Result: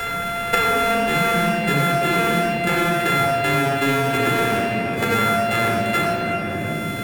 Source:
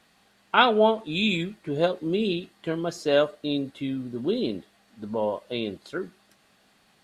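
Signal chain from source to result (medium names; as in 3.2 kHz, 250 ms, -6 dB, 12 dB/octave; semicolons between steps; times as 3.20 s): sorted samples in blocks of 64 samples; graphic EQ with 31 bands 315 Hz -5 dB, 1.6 kHz +11 dB, 2.5 kHz +8 dB, 5 kHz -7 dB; peak limiter -17 dBFS, peak gain reduction 15 dB; simulated room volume 2900 m³, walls mixed, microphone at 4.1 m; three bands compressed up and down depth 100%; trim +3 dB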